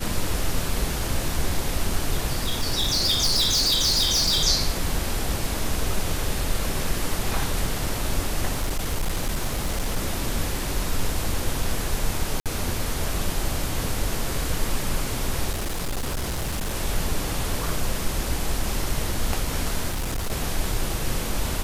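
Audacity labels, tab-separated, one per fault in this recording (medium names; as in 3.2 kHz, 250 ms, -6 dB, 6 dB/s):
2.390000	4.440000	clipped -17.5 dBFS
8.520000	9.970000	clipped -20 dBFS
12.400000	12.460000	dropout 57 ms
15.500000	16.750000	clipped -23 dBFS
19.890000	20.320000	clipped -23 dBFS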